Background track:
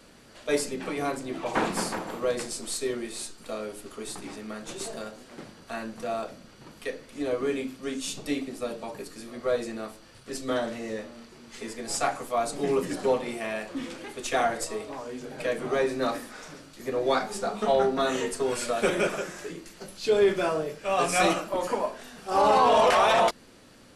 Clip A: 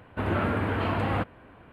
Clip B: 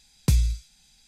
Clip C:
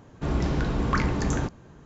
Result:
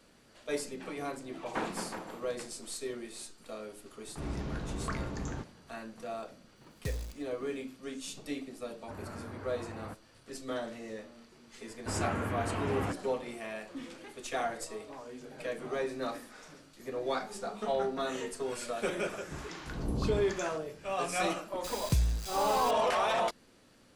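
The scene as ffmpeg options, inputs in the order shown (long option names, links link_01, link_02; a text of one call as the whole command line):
ffmpeg -i bed.wav -i cue0.wav -i cue1.wav -i cue2.wav -filter_complex "[3:a]asplit=2[link_01][link_02];[2:a]asplit=2[link_03][link_04];[1:a]asplit=2[link_05][link_06];[0:a]volume=-8.5dB[link_07];[link_03]acrusher=bits=6:dc=4:mix=0:aa=0.000001[link_08];[link_05]equalizer=frequency=3500:width_type=o:width=1.2:gain=-7.5[link_09];[link_02]acrossover=split=910[link_10][link_11];[link_10]aeval=exprs='val(0)*(1-1/2+1/2*cos(2*PI*1.1*n/s))':channel_layout=same[link_12];[link_11]aeval=exprs='val(0)*(1-1/2-1/2*cos(2*PI*1.1*n/s))':channel_layout=same[link_13];[link_12][link_13]amix=inputs=2:normalize=0[link_14];[link_04]aeval=exprs='val(0)+0.5*0.0422*sgn(val(0))':channel_layout=same[link_15];[link_01]atrim=end=1.85,asetpts=PTS-STARTPTS,volume=-12dB,afade=type=in:duration=0.004:curve=hsin,afade=type=out:start_time=1.846:duration=0.004:curve=hsin,adelay=3950[link_16];[link_08]atrim=end=1.07,asetpts=PTS-STARTPTS,volume=-16.5dB,afade=type=in:duration=0.004:curve=hsin,afade=type=out:start_time=1.066:duration=0.004:curve=hsin,adelay=6570[link_17];[link_09]atrim=end=1.72,asetpts=PTS-STARTPTS,volume=-17dB,afade=type=in:duration=0.004:curve=hsin,afade=type=out:start_time=1.716:duration=0.004:curve=hsin,adelay=8710[link_18];[link_06]atrim=end=1.72,asetpts=PTS-STARTPTS,volume=-7.5dB,afade=type=in:duration=0.004:curve=hsin,afade=type=out:start_time=1.716:duration=0.004:curve=hsin,adelay=11690[link_19];[link_14]atrim=end=1.85,asetpts=PTS-STARTPTS,volume=-6dB,afade=type=in:duration=0.004:curve=hsin,afade=type=out:start_time=1.846:duration=0.004:curve=hsin,adelay=19090[link_20];[link_15]atrim=end=1.07,asetpts=PTS-STARTPTS,volume=-8.5dB,afade=type=in:duration=0.004:curve=hsin,afade=type=out:start_time=1.066:duration=0.004:curve=hsin,adelay=954324S[link_21];[link_07][link_16][link_17][link_18][link_19][link_20][link_21]amix=inputs=7:normalize=0" out.wav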